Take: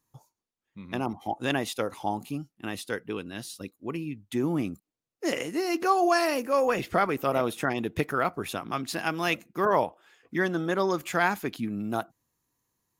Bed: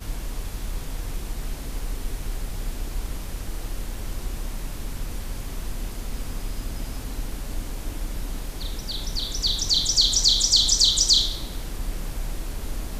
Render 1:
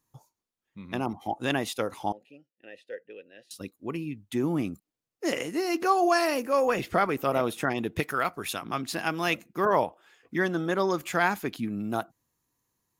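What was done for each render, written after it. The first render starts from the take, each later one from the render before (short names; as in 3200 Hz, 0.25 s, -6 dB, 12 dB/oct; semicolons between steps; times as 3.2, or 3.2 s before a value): 2.12–3.51 vowel filter e; 8–8.62 tilt shelf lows -5 dB, about 1300 Hz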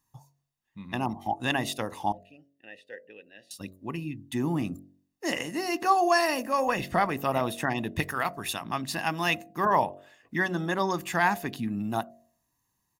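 comb 1.1 ms, depth 48%; de-hum 46.72 Hz, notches 15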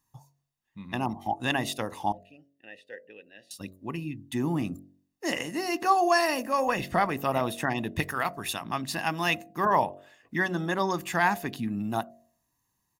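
nothing audible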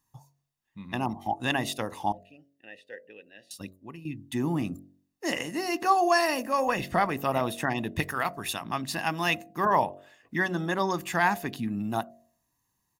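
3.62–4.05 fade out quadratic, to -10.5 dB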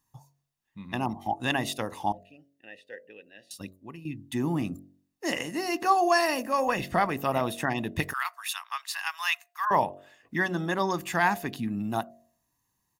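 8.13–9.71 steep high-pass 1000 Hz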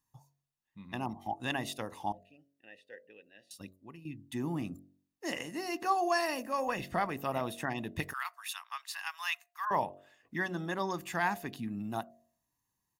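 gain -7 dB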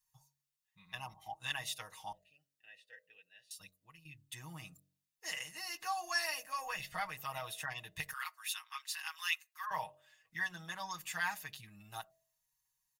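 passive tone stack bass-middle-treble 10-0-10; comb 6.4 ms, depth 88%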